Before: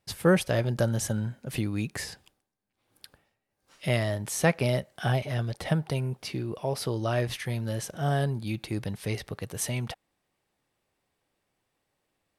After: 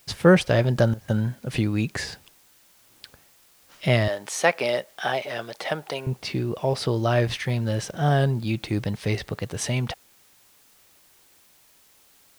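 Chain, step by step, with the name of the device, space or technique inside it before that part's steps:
0:04.08–0:06.07: high-pass filter 440 Hz 12 dB per octave
worn cassette (low-pass filter 6,600 Hz 12 dB per octave; tape wow and flutter; tape dropouts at 0:00.94, 140 ms −17 dB; white noise bed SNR 32 dB)
level +6 dB

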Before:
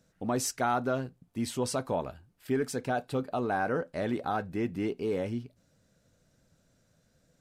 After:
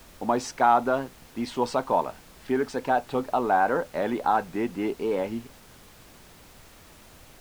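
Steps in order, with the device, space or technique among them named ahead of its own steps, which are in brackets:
horn gramophone (band-pass filter 210–4,300 Hz; parametric band 910 Hz +9.5 dB 0.58 octaves; tape wow and flutter; pink noise bed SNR 23 dB)
level +4 dB

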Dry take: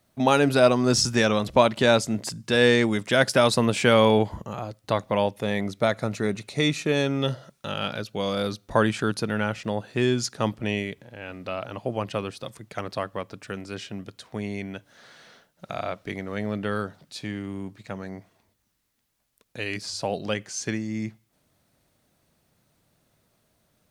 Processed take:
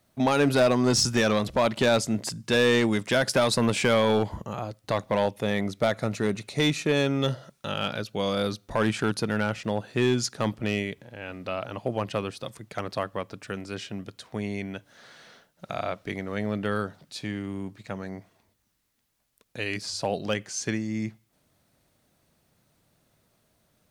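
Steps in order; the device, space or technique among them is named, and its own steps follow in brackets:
limiter into clipper (brickwall limiter −10 dBFS, peak gain reduction 6.5 dB; hard clipping −15.5 dBFS, distortion −16 dB)

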